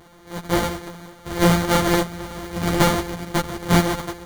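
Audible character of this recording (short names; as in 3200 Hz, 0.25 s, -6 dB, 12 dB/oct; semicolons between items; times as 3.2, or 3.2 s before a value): a buzz of ramps at a fixed pitch in blocks of 256 samples; random-step tremolo; aliases and images of a low sample rate 2600 Hz, jitter 0%; a shimmering, thickened sound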